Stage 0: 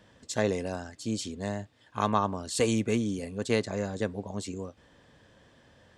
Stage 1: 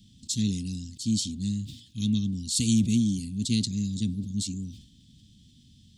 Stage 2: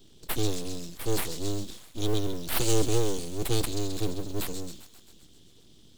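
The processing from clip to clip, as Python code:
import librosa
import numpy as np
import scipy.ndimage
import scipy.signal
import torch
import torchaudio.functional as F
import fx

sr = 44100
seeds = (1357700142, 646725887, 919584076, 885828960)

y1 = scipy.signal.sosfilt(scipy.signal.ellip(3, 1.0, 50, [230.0, 3500.0], 'bandstop', fs=sr, output='sos'), x)
y1 = fx.sustainer(y1, sr, db_per_s=95.0)
y1 = F.gain(torch.from_numpy(y1), 7.0).numpy()
y2 = fx.mod_noise(y1, sr, seeds[0], snr_db=27)
y2 = fx.echo_wet_highpass(y2, sr, ms=132, feedback_pct=66, hz=1700.0, wet_db=-11.5)
y2 = np.abs(y2)
y2 = F.gain(torch.from_numpy(y2), 2.0).numpy()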